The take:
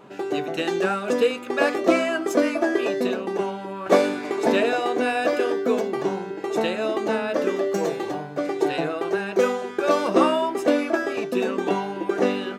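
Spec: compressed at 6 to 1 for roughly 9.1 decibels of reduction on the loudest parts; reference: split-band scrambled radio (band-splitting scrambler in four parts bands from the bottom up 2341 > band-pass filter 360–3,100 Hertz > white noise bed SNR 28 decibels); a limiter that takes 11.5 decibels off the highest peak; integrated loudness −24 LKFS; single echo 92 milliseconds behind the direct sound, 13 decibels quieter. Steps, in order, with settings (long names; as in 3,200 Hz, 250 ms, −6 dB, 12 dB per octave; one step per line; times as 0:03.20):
downward compressor 6 to 1, threshold −22 dBFS
brickwall limiter −23.5 dBFS
single-tap delay 92 ms −13 dB
band-splitting scrambler in four parts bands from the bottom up 2341
band-pass filter 360–3,100 Hz
white noise bed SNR 28 dB
level +12.5 dB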